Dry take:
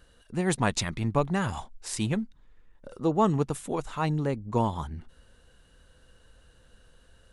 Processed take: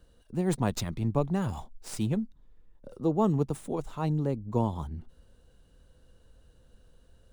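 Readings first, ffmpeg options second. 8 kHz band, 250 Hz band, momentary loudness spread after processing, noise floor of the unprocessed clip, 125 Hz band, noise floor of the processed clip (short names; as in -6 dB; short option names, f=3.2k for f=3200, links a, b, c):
-7.0 dB, -0.5 dB, 13 LU, -60 dBFS, 0.0 dB, -61 dBFS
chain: -filter_complex "[0:a]equalizer=f=1.9k:t=o:w=2:g=-11.5,acrossover=split=230|4600[a][b][c];[c]aeval=exprs='max(val(0),0)':c=same[d];[a][b][d]amix=inputs=3:normalize=0"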